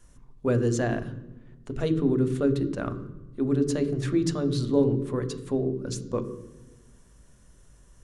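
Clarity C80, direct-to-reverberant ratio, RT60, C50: 13.5 dB, 9.0 dB, 1.1 s, 12.0 dB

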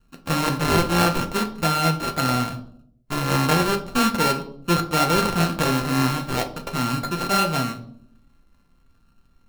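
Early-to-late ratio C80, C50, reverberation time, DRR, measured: 16.5 dB, 13.0 dB, 0.65 s, 4.5 dB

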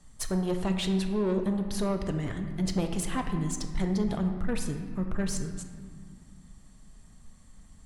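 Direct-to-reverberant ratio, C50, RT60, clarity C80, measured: 5.0 dB, 7.0 dB, 2.0 s, 8.5 dB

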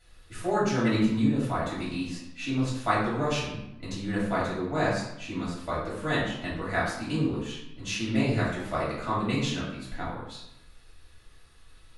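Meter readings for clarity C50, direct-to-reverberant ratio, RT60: 2.0 dB, −9.5 dB, 0.85 s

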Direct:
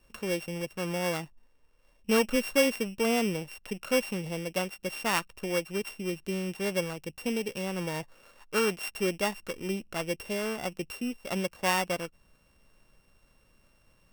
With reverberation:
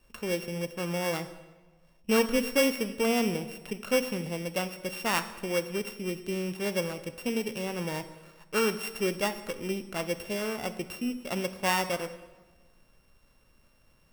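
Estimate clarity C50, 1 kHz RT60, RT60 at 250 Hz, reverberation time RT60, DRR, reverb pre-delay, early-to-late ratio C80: 12.5 dB, 1.2 s, 1.5 s, 1.3 s, 10.0 dB, 10 ms, 14.5 dB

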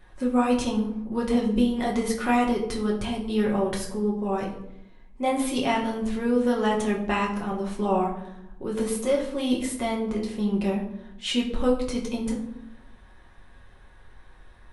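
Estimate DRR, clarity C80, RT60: −3.0 dB, 10.5 dB, 0.80 s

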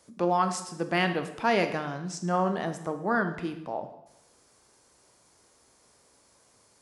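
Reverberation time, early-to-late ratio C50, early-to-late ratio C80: 0.85 s, 10.0 dB, 12.5 dB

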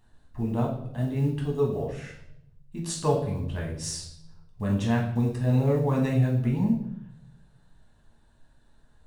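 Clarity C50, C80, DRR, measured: 5.5 dB, 9.5 dB, −2.5 dB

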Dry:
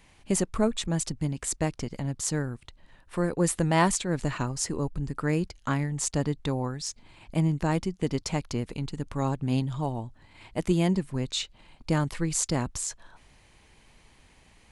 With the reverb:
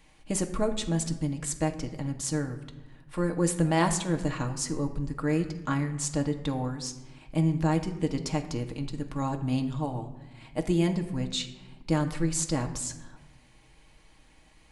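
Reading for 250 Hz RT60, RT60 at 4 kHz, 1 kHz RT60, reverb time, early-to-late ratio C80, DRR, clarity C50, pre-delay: 1.6 s, 0.70 s, 1.1 s, 1.2 s, 13.5 dB, 4.0 dB, 11.0 dB, 4 ms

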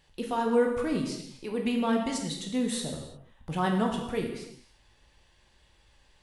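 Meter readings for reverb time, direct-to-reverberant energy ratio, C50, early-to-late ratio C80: non-exponential decay, 1.0 dB, 5.0 dB, 7.0 dB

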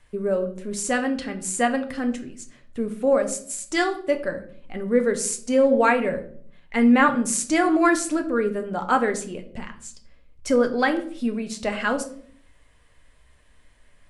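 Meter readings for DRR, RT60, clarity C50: 5.5 dB, 0.55 s, 12.5 dB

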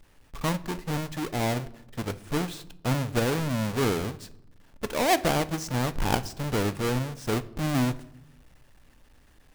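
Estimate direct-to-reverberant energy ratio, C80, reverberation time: 12.0 dB, 21.5 dB, 0.80 s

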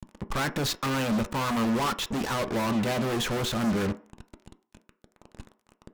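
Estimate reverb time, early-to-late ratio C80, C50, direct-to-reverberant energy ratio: 0.45 s, 21.5 dB, 17.0 dB, 9.5 dB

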